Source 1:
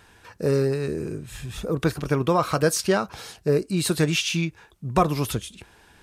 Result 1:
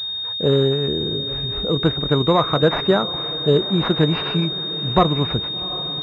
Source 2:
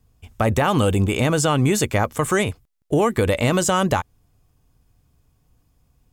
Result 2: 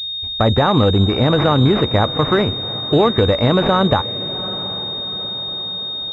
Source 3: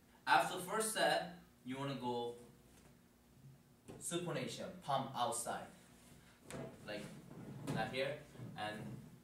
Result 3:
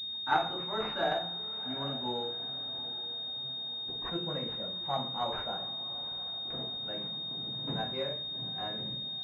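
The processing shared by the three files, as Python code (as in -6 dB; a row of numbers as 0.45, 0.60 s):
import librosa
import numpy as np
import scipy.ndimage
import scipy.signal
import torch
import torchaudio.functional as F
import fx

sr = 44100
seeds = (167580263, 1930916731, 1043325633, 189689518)

y = fx.echo_diffused(x, sr, ms=761, feedback_pct=53, wet_db=-15.5)
y = fx.pwm(y, sr, carrier_hz=3700.0)
y = F.gain(torch.from_numpy(y), 4.5).numpy()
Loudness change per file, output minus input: +5.0, +3.5, +7.0 LU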